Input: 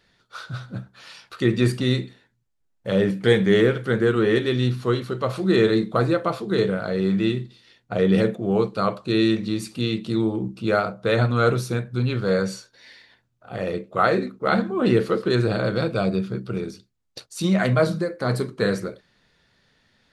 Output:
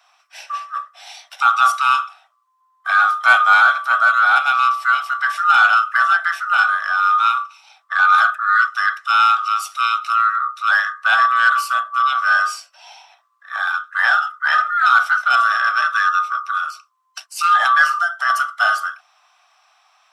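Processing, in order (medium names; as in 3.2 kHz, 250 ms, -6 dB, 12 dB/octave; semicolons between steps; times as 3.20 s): split-band scrambler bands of 1 kHz; steep high-pass 620 Hz 96 dB/octave; in parallel at -4.5 dB: saturation -13.5 dBFS, distortion -17 dB; on the sum: trim +2 dB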